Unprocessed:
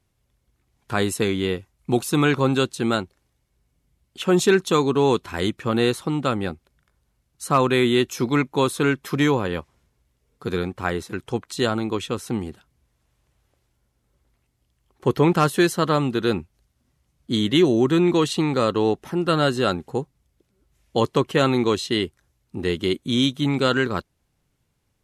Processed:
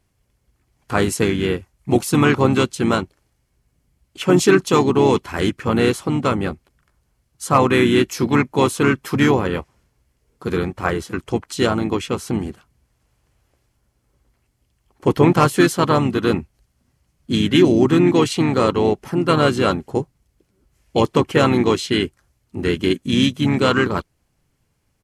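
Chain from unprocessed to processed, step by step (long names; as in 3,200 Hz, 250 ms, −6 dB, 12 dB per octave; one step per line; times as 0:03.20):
notch filter 3,700 Hz, Q 7.5
pitch-shifted copies added −5 semitones −9 dB, −3 semitones −9 dB
level +3 dB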